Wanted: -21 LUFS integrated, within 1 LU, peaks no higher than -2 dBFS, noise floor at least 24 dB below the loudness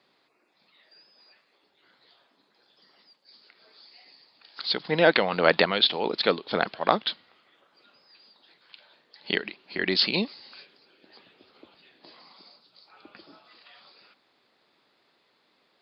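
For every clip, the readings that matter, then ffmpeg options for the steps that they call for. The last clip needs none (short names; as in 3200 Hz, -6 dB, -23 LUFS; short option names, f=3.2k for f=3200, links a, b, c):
loudness -24.5 LUFS; peak -1.0 dBFS; loudness target -21.0 LUFS
-> -af "volume=3.5dB,alimiter=limit=-2dB:level=0:latency=1"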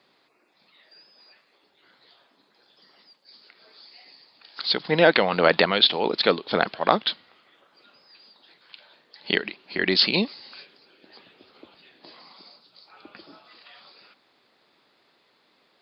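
loudness -21.5 LUFS; peak -2.0 dBFS; noise floor -65 dBFS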